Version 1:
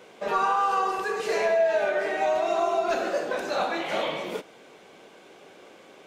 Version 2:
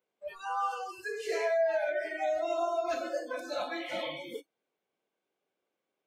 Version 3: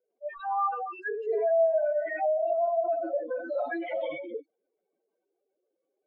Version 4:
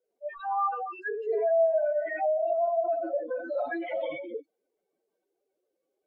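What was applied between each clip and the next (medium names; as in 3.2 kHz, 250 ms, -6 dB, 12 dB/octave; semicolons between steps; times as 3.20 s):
spectral noise reduction 30 dB; trim -5.5 dB
spectral contrast enhancement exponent 3; trim +5 dB
AAC 48 kbps 48 kHz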